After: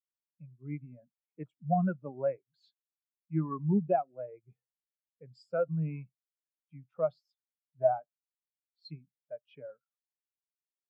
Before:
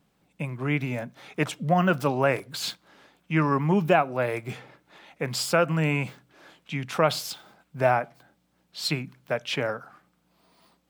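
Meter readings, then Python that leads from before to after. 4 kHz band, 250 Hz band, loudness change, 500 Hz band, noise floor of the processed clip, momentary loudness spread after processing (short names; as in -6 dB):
under -25 dB, -7.5 dB, -6.5 dB, -7.5 dB, under -85 dBFS, 19 LU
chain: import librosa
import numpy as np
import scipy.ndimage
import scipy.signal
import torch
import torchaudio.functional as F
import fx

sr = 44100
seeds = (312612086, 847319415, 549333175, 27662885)

y = fx.spectral_expand(x, sr, expansion=2.5)
y = y * 10.0 ** (-7.0 / 20.0)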